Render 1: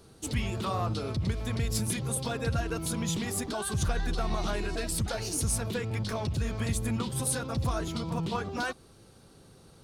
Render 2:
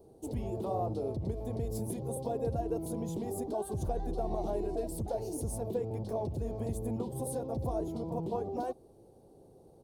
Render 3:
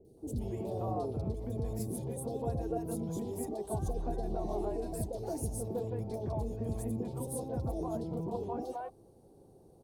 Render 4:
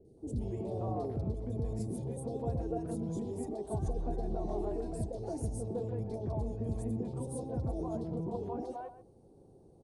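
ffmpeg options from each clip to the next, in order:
ffmpeg -i in.wav -af "firequalizer=gain_entry='entry(190,0);entry(360,9);entry(790,7);entry(1300,-17);entry(2200,-17);entry(15000,2)':delay=0.05:min_phase=1,volume=-6.5dB" out.wav
ffmpeg -i in.wav -filter_complex "[0:a]acrossover=split=570|2900[link_01][link_02][link_03];[link_03]adelay=50[link_04];[link_02]adelay=170[link_05];[link_01][link_05][link_04]amix=inputs=3:normalize=0" out.wav
ffmpeg -i in.wav -filter_complex "[0:a]tiltshelf=frequency=630:gain=3,asplit=2[link_01][link_02];[link_02]adelay=130,highpass=300,lowpass=3400,asoftclip=type=hard:threshold=-31dB,volume=-13dB[link_03];[link_01][link_03]amix=inputs=2:normalize=0,aresample=22050,aresample=44100,volume=-2dB" out.wav

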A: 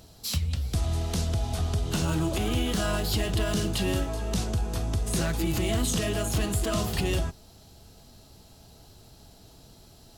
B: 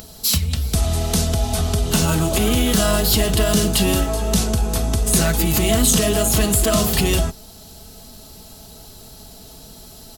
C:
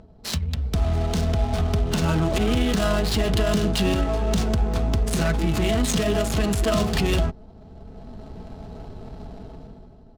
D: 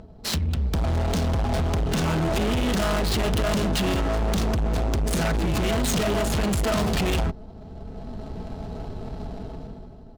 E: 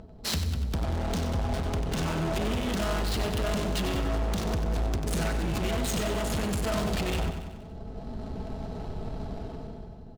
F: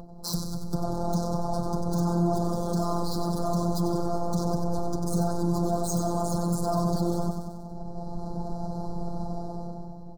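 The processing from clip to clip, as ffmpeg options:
ffmpeg -i in.wav -af "aecho=1:1:4.6:0.41,acompressor=mode=upward:threshold=-47dB:ratio=2.5,highshelf=frequency=8200:gain=11,volume=8.5dB" out.wav
ffmpeg -i in.wav -af "dynaudnorm=framelen=130:gausssize=11:maxgain=12dB,alimiter=limit=-5.5dB:level=0:latency=1:release=46,adynamicsmooth=sensitivity=2:basefreq=680,volume=-5.5dB" out.wav
ffmpeg -i in.wav -af "asoftclip=type=hard:threshold=-25dB,volume=4dB" out.wav
ffmpeg -i in.wav -filter_complex "[0:a]asplit=2[link_01][link_02];[link_02]aecho=0:1:94|188|282|376|470|564:0.398|0.211|0.112|0.0593|0.0314|0.0166[link_03];[link_01][link_03]amix=inputs=2:normalize=0,alimiter=limit=-20dB:level=0:latency=1:release=401,volume=-2.5dB" out.wav
ffmpeg -i in.wav -af "afftfilt=real='hypot(re,im)*cos(PI*b)':imag='0':win_size=1024:overlap=0.75,aeval=exprs='0.355*sin(PI/2*2.51*val(0)/0.355)':channel_layout=same,asuperstop=centerf=2400:order=8:qfactor=0.74,volume=-4dB" out.wav

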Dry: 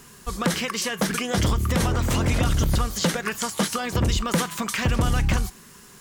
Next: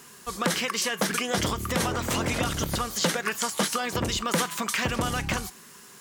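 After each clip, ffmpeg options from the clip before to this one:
ffmpeg -i in.wav -af "highpass=frequency=300:poles=1" out.wav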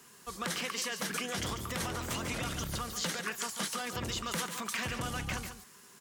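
ffmpeg -i in.wav -filter_complex "[0:a]acrossover=split=160|1100|5600[link_01][link_02][link_03][link_04];[link_02]alimiter=level_in=2dB:limit=-24dB:level=0:latency=1,volume=-2dB[link_05];[link_01][link_05][link_03][link_04]amix=inputs=4:normalize=0,aecho=1:1:143:0.355,volume=-8dB" out.wav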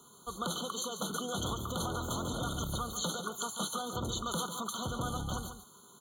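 ffmpeg -i in.wav -af "afftfilt=real='re*eq(mod(floor(b*sr/1024/1500),2),0)':imag='im*eq(mod(floor(b*sr/1024/1500),2),0)':win_size=1024:overlap=0.75,volume=1.5dB" out.wav

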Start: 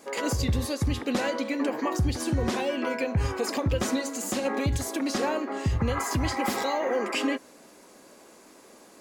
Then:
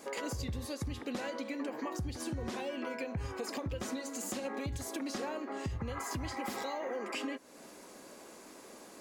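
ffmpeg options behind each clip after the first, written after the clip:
ffmpeg -i in.wav -af "acompressor=threshold=-39dB:ratio=3" out.wav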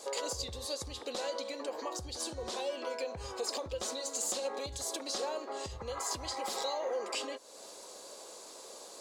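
ffmpeg -i in.wav -af "equalizer=frequency=125:width_type=o:width=1:gain=-8,equalizer=frequency=250:width_type=o:width=1:gain=-8,equalizer=frequency=500:width_type=o:width=1:gain=9,equalizer=frequency=1000:width_type=o:width=1:gain=5,equalizer=frequency=2000:width_type=o:width=1:gain=-5,equalizer=frequency=4000:width_type=o:width=1:gain=12,equalizer=frequency=8000:width_type=o:width=1:gain=10,volume=-4dB" out.wav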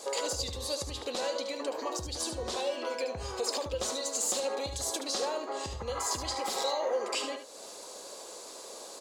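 ffmpeg -i in.wav -af "aecho=1:1:74:0.376,volume=3.5dB" out.wav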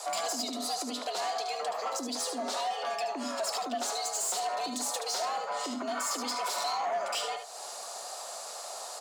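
ffmpeg -i in.wav -filter_complex "[0:a]asplit=2[link_01][link_02];[link_02]alimiter=level_in=4dB:limit=-24dB:level=0:latency=1:release=456,volume=-4dB,volume=-3dB[link_03];[link_01][link_03]amix=inputs=2:normalize=0,asoftclip=type=tanh:threshold=-26.5dB,afreqshift=180" out.wav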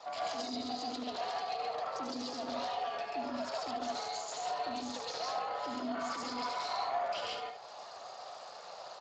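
ffmpeg -i in.wav -af "aecho=1:1:96.21|137:0.501|1,adynamicsmooth=sensitivity=7.5:basefreq=4000,volume=-7dB" -ar 16000 -c:a libspeex -b:a 21k out.spx

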